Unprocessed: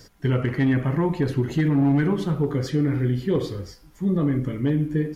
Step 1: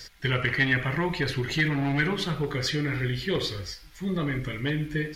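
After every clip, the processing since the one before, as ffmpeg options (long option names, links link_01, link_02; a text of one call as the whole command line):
ffmpeg -i in.wav -af "equalizer=frequency=125:width_type=o:width=1:gain=-6,equalizer=frequency=250:width_type=o:width=1:gain=-11,equalizer=frequency=500:width_type=o:width=1:gain=-4,equalizer=frequency=1000:width_type=o:width=1:gain=-4,equalizer=frequency=2000:width_type=o:width=1:gain=7,equalizer=frequency=4000:width_type=o:width=1:gain=8,volume=2.5dB" out.wav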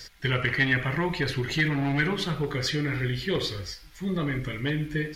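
ffmpeg -i in.wav -af anull out.wav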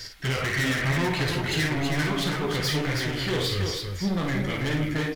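ffmpeg -i in.wav -filter_complex "[0:a]volume=29.5dB,asoftclip=hard,volume=-29.5dB,flanger=delay=8.8:depth=6.5:regen=55:speed=1.7:shape=triangular,asplit=2[link_01][link_02];[link_02]aecho=0:1:52|325:0.501|0.596[link_03];[link_01][link_03]amix=inputs=2:normalize=0,volume=8.5dB" out.wav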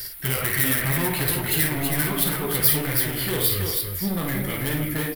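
ffmpeg -i in.wav -af "aexciter=amount=8.2:drive=9.6:freq=9500" out.wav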